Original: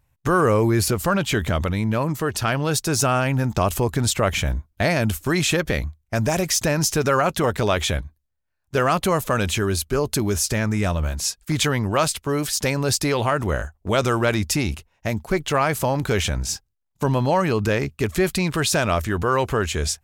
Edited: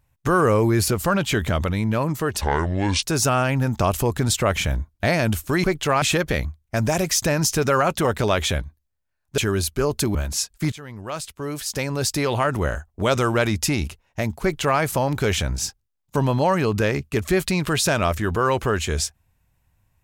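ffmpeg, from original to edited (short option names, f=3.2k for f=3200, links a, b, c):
-filter_complex "[0:a]asplit=8[a][b][c][d][e][f][g][h];[a]atrim=end=2.414[i];[b]atrim=start=2.41:end=2.8,asetpts=PTS-STARTPTS,asetrate=27783,aresample=44100[j];[c]atrim=start=2.796:end=5.412[k];[d]atrim=start=15.288:end=15.672[l];[e]atrim=start=5.408:end=8.772[m];[f]atrim=start=9.518:end=10.292[n];[g]atrim=start=11.018:end=11.59,asetpts=PTS-STARTPTS,afade=t=out:st=0.568:d=0.004:c=hsin:silence=0.0841395[o];[h]atrim=start=11.59,asetpts=PTS-STARTPTS,afade=t=in:d=1.75:silence=0.0841395[p];[i][j]acrossfade=d=0.004:c1=hsin:c2=hsin[q];[q][k]acrossfade=d=0.004:c1=hsin:c2=hsin[r];[r][l]acrossfade=d=0.004:c1=hsin:c2=hsin[s];[s][m]acrossfade=d=0.004:c1=hsin:c2=hsin[t];[t][n]acrossfade=d=0.004:c1=hsin:c2=hsin[u];[o][p]concat=n=2:v=0:a=1[v];[u][v]acrossfade=d=0.004:c1=hsin:c2=hsin"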